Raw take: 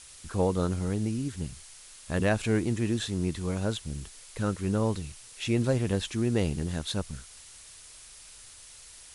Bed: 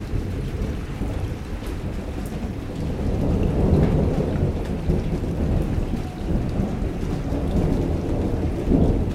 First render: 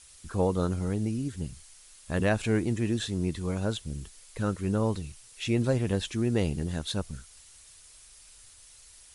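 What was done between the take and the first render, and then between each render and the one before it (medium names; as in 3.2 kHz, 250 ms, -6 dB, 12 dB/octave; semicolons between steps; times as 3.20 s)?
noise reduction 6 dB, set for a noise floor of -50 dBFS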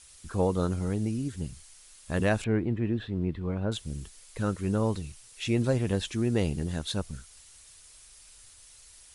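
2.44–3.72 s: distance through air 440 m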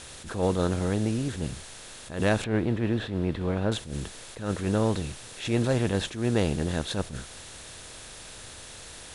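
spectral levelling over time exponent 0.6; attacks held to a fixed rise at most 120 dB/s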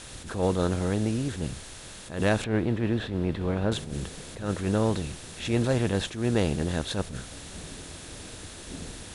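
add bed -23 dB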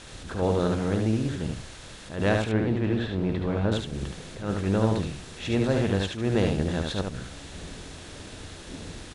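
distance through air 58 m; delay 73 ms -4 dB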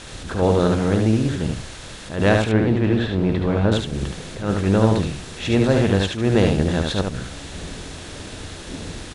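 trim +7 dB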